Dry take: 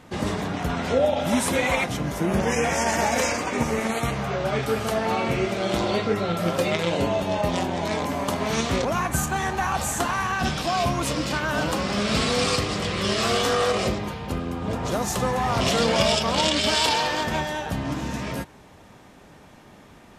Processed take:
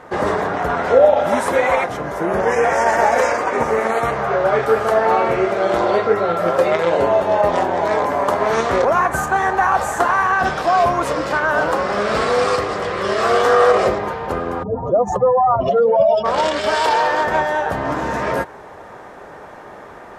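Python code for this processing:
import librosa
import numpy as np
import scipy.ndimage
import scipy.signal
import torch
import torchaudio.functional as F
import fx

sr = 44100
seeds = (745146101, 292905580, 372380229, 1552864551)

y = fx.spec_expand(x, sr, power=2.7, at=(14.62, 16.24), fade=0.02)
y = fx.high_shelf(y, sr, hz=11000.0, db=-3.5)
y = fx.rider(y, sr, range_db=10, speed_s=2.0)
y = fx.band_shelf(y, sr, hz=830.0, db=13.0, octaves=2.7)
y = y * librosa.db_to_amplitude(-3.5)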